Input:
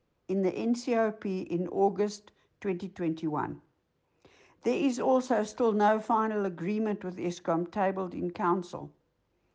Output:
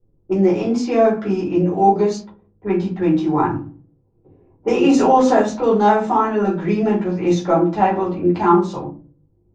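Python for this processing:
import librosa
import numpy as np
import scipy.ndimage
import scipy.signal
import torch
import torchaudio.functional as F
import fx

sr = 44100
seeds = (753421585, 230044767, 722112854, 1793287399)

p1 = fx.rider(x, sr, range_db=3, speed_s=0.5)
p2 = x + F.gain(torch.from_numpy(p1), 0.5).numpy()
p3 = fx.room_shoebox(p2, sr, seeds[0], volume_m3=210.0, walls='furnished', distance_m=4.4)
p4 = fx.env_lowpass(p3, sr, base_hz=330.0, full_db=-10.5)
p5 = fx.env_flatten(p4, sr, amount_pct=50, at=(4.83, 5.41), fade=0.02)
y = F.gain(torch.from_numpy(p5), -4.0).numpy()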